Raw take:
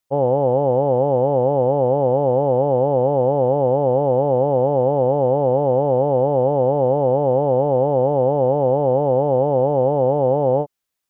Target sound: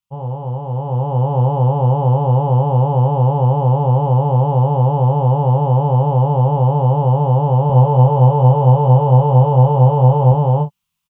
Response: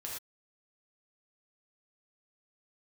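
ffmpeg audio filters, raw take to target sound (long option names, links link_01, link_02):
-filter_complex "[0:a]firequalizer=gain_entry='entry(100,0);entry(190,6);entry(270,-20);entry(390,-15);entry(620,-17);entry(980,-1);entry(1700,-13);entry(2800,1);entry(4000,-8)':delay=0.05:min_phase=1,dynaudnorm=framelen=690:gausssize=3:maxgain=11dB,asettb=1/sr,asplit=3[link_01][link_02][link_03];[link_01]atrim=end=7.684[link_04];[link_02]atrim=start=7.68:end=10.32,asetpts=PTS-STARTPTS,afade=type=in:duration=0.004:curve=qsin,afade=type=out:start_time=2.636:duration=0.004:curve=qsin,asplit=2[link_05][link_06];[link_06]adelay=16,volume=-3.5dB[link_07];[link_05][link_07]amix=inputs=2:normalize=0,atrim=end_sample=116424[link_08];[link_03]atrim=start=10.316[link_09];[link_04][link_08]acrossfade=duration=0.004:curve1=hsin:curve2=qsin[link_10];[link_10][link_09]acrossfade=duration=0.004:curve1=qsin:curve2=hsin,aecho=1:1:25|39:0.531|0.141,volume=-1dB"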